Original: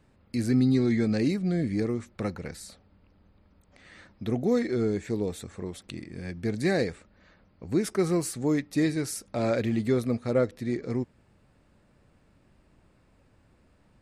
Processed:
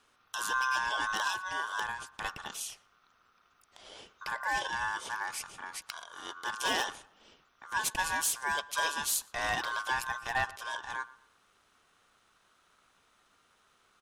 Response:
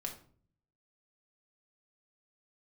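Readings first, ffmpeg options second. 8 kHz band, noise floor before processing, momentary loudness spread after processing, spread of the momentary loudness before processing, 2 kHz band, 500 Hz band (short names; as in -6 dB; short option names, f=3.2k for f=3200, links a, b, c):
+5.5 dB, -63 dBFS, 13 LU, 14 LU, +8.5 dB, -17.0 dB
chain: -filter_complex "[0:a]tiltshelf=f=1.2k:g=-7.5,bandreject=f=60:t=h:w=6,bandreject=f=120:t=h:w=6,bandreject=f=180:t=h:w=6,bandreject=f=240:t=h:w=6,aeval=exprs='0.0944*(abs(mod(val(0)/0.0944+3,4)-2)-1)':c=same,aeval=exprs='val(0)*sin(2*PI*1300*n/s)':c=same,asplit=2[a][b];[b]adelay=118,lowpass=f=2.5k:p=1,volume=-20dB,asplit=2[c][d];[d]adelay=118,lowpass=f=2.5k:p=1,volume=0.37,asplit=2[e][f];[f]adelay=118,lowpass=f=2.5k:p=1,volume=0.37[g];[a][c][e][g]amix=inputs=4:normalize=0,volume=1.5dB"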